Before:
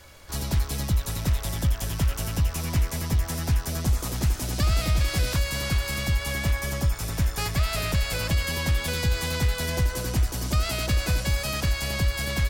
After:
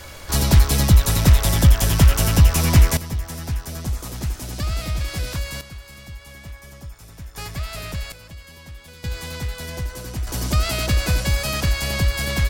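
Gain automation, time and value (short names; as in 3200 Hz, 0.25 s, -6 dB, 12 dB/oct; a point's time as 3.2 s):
+11 dB
from 2.97 s -2 dB
from 5.61 s -13 dB
from 7.35 s -4.5 dB
from 8.12 s -15.5 dB
from 9.04 s -4 dB
from 10.27 s +4.5 dB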